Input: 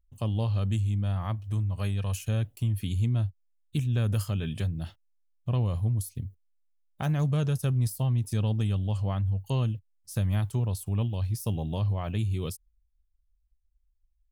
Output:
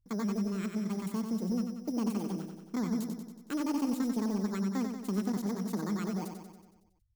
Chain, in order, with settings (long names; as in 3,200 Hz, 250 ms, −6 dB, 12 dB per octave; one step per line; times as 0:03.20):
samples in bit-reversed order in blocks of 16 samples
on a send: repeating echo 185 ms, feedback 59%, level −6.5 dB
on the sum: wrong playback speed 7.5 ips tape played at 15 ips
level −6 dB